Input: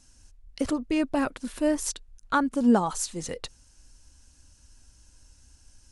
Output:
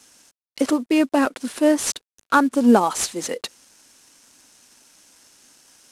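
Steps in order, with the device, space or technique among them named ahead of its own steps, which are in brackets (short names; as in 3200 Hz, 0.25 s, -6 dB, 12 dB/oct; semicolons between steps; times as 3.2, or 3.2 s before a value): early wireless headset (HPF 230 Hz 24 dB/oct; CVSD 64 kbps); gain +8 dB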